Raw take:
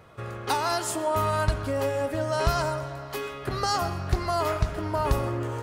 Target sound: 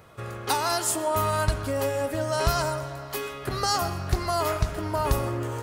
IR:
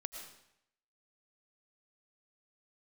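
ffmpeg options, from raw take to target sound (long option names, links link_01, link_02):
-af "highshelf=frequency=6300:gain=9"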